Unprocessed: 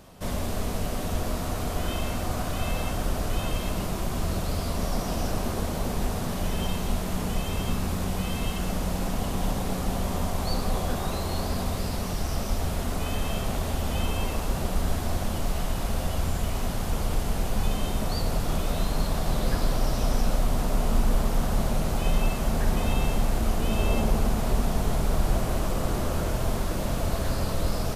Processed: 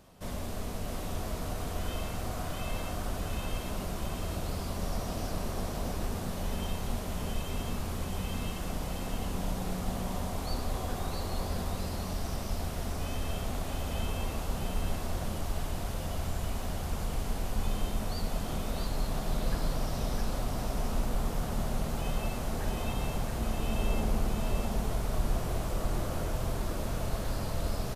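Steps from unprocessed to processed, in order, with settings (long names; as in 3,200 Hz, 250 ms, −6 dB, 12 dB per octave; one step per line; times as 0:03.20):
single-tap delay 661 ms −4.5 dB
level −7.5 dB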